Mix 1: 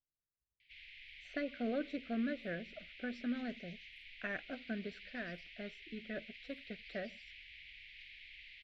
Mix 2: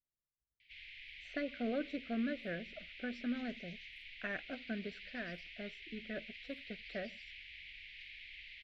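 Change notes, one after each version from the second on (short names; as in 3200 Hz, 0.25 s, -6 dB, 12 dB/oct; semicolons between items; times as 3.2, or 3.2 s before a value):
reverb: on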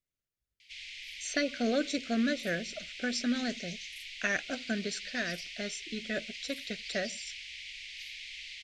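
speech +6.5 dB; master: remove air absorption 470 m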